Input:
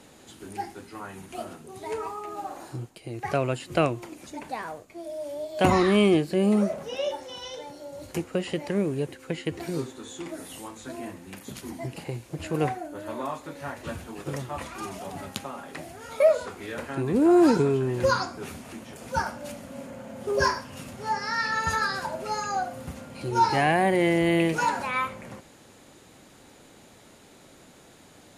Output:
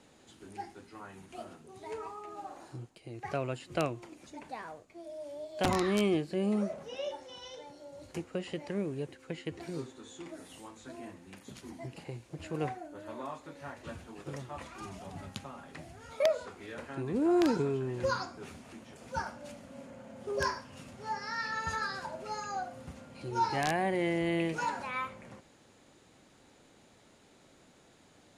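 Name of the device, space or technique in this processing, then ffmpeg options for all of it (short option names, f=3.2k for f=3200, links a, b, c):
overflowing digital effects unit: -filter_complex "[0:a]asplit=3[a][b][c];[a]afade=t=out:st=14.8:d=0.02[d];[b]asubboost=boost=2:cutoff=210,afade=t=in:st=14.8:d=0.02,afade=t=out:st=16.11:d=0.02[e];[c]afade=t=in:st=16.11:d=0.02[f];[d][e][f]amix=inputs=3:normalize=0,aeval=exprs='(mod(3.16*val(0)+1,2)-1)/3.16':c=same,lowpass=8.6k,volume=-8.5dB"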